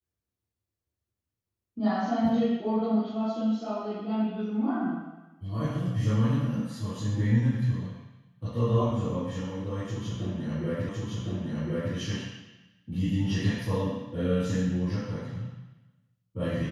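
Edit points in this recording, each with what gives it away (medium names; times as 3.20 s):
10.89 s: repeat of the last 1.06 s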